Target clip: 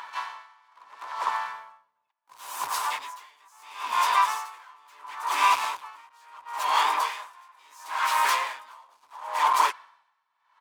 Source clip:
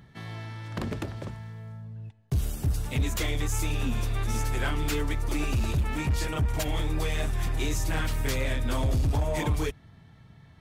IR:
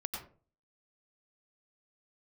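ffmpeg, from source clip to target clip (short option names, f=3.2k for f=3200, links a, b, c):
-filter_complex "[0:a]asplit=2[a][b];[b]highpass=f=720:p=1,volume=18dB,asoftclip=type=tanh:threshold=-20dB[c];[a][c]amix=inputs=2:normalize=0,lowpass=f=6.8k:p=1,volume=-6dB,asplit=4[d][e][f][g];[e]asetrate=37084,aresample=44100,atempo=1.18921,volume=-5dB[h];[f]asetrate=58866,aresample=44100,atempo=0.749154,volume=-6dB[i];[g]asetrate=88200,aresample=44100,atempo=0.5,volume=-14dB[j];[d][h][i][j]amix=inputs=4:normalize=0,asoftclip=type=hard:threshold=-22.5dB,highpass=f=1k:t=q:w=10,aeval=exprs='val(0)*pow(10,-34*(0.5-0.5*cos(2*PI*0.73*n/s))/20)':c=same,volume=1dB"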